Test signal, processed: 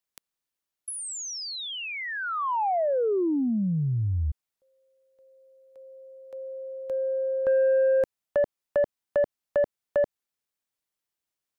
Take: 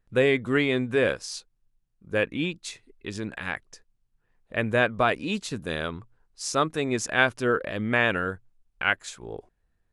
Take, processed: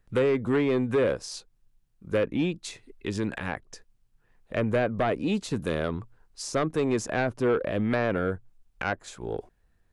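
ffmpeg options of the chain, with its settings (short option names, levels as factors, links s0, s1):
-filter_complex "[0:a]acrossover=split=430|1000[s0][s1][s2];[s0]acompressor=threshold=0.0398:ratio=4[s3];[s1]acompressor=threshold=0.0398:ratio=4[s4];[s2]acompressor=threshold=0.00794:ratio=4[s5];[s3][s4][s5]amix=inputs=3:normalize=0,asplit=2[s6][s7];[s7]aeval=exprs='0.316*sin(PI/2*3.98*val(0)/0.316)':c=same,volume=0.282[s8];[s6][s8]amix=inputs=2:normalize=0,volume=0.668"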